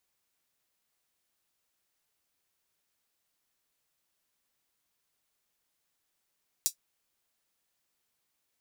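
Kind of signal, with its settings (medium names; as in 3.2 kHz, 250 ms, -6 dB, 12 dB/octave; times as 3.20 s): closed hi-hat, high-pass 5.6 kHz, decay 0.10 s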